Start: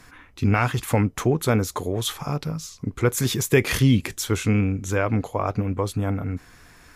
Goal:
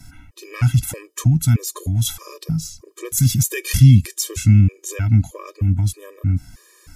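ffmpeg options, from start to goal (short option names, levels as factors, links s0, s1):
-filter_complex "[0:a]bass=f=250:g=14,treble=f=4000:g=12,acrossover=split=240|1500[s0][s1][s2];[s1]acompressor=threshold=0.0282:ratio=6[s3];[s0][s3][s2]amix=inputs=3:normalize=0,afftfilt=real='re*gt(sin(2*PI*1.6*pts/sr)*(1-2*mod(floor(b*sr/1024/320),2)),0)':imag='im*gt(sin(2*PI*1.6*pts/sr)*(1-2*mod(floor(b*sr/1024/320),2)),0)':win_size=1024:overlap=0.75,volume=0.841"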